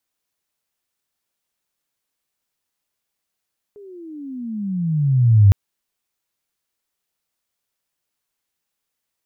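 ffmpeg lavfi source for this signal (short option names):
-f lavfi -i "aevalsrc='pow(10,(-6+32*(t/1.76-1))/20)*sin(2*PI*419*1.76/(-25.5*log(2)/12)*(exp(-25.5*log(2)/12*t/1.76)-1))':d=1.76:s=44100"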